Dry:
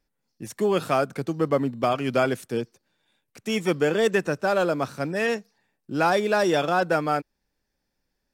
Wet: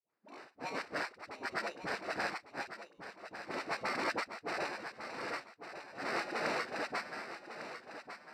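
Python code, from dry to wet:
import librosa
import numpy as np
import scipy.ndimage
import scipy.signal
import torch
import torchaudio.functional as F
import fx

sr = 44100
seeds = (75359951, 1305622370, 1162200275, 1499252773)

p1 = fx.tape_start_head(x, sr, length_s=0.73)
p2 = fx.spec_gate(p1, sr, threshold_db=-25, keep='weak')
p3 = fx.tilt_eq(p2, sr, slope=-2.5)
p4 = fx.level_steps(p3, sr, step_db=22)
p5 = p3 + (p4 * 10.0 ** (-2.0 / 20.0))
p6 = fx.sample_hold(p5, sr, seeds[0], rate_hz=3300.0, jitter_pct=0)
p7 = fx.bandpass_edges(p6, sr, low_hz=300.0, high_hz=4400.0)
p8 = fx.dispersion(p7, sr, late='highs', ms=43.0, hz=680.0)
p9 = p8 + fx.echo_single(p8, sr, ms=1151, db=-10.5, dry=0)
p10 = fx.dynamic_eq(p9, sr, hz=1000.0, q=2.2, threshold_db=-58.0, ratio=4.0, max_db=-5)
y = p10 * 10.0 ** (5.0 / 20.0)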